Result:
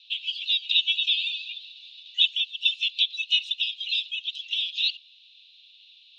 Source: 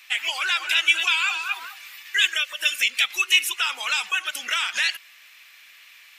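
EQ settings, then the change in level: Chebyshev high-pass 2.7 kHz, order 6; resonant low-pass 3.8 kHz, resonance Q 7.9; distance through air 98 m; -8.0 dB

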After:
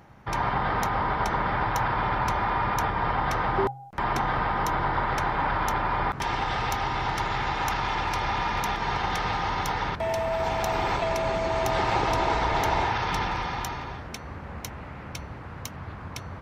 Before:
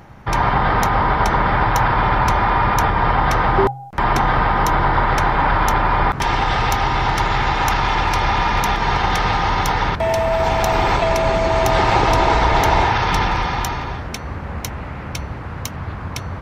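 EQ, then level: bass shelf 65 Hz -6.5 dB; -9.0 dB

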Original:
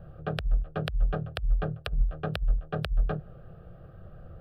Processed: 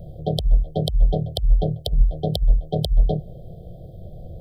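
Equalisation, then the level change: brick-wall FIR band-stop 770–3100 Hz; treble shelf 3.1 kHz +6.5 dB; +9.0 dB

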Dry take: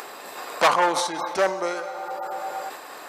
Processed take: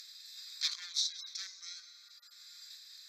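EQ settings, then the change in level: ladder band-pass 4.3 kHz, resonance 50%; tilt EQ +5 dB/octave; static phaser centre 2.9 kHz, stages 6; -4.0 dB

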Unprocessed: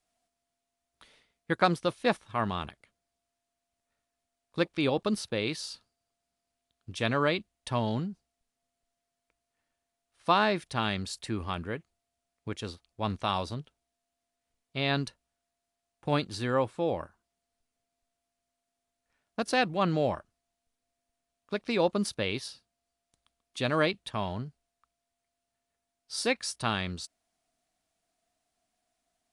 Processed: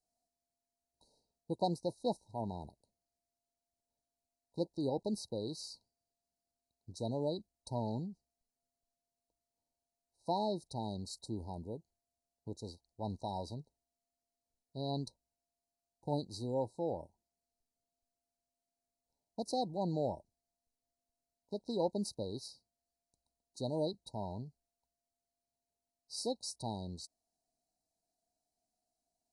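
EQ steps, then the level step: brick-wall FIR band-stop 980–3800 Hz; -7.5 dB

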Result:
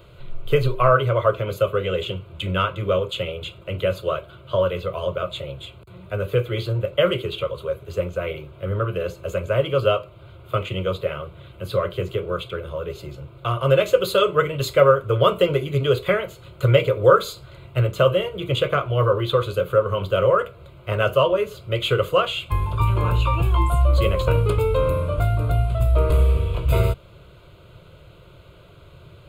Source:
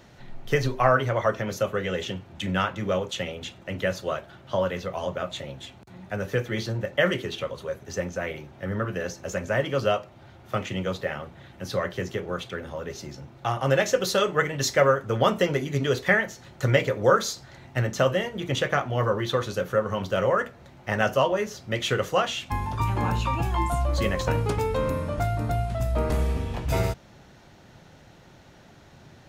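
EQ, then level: bass shelf 310 Hz +5 dB; static phaser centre 1.2 kHz, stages 8; +5.0 dB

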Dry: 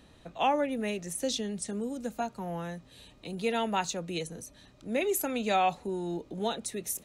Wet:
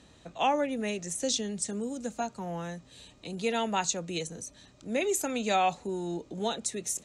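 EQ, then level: high-pass 44 Hz; resonant low-pass 7.4 kHz, resonance Q 2.4; 0.0 dB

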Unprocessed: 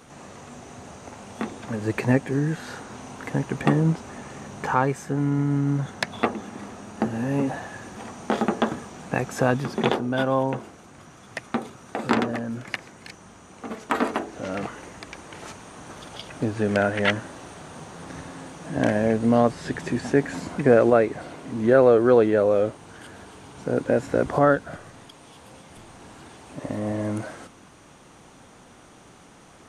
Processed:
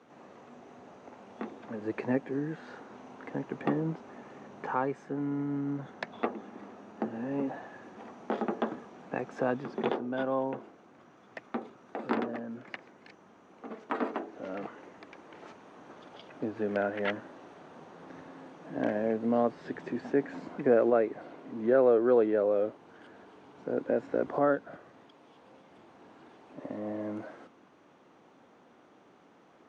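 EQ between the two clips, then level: high-pass 110 Hz; three-band isolator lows -23 dB, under 260 Hz, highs -19 dB, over 7 kHz; RIAA curve playback; -9.0 dB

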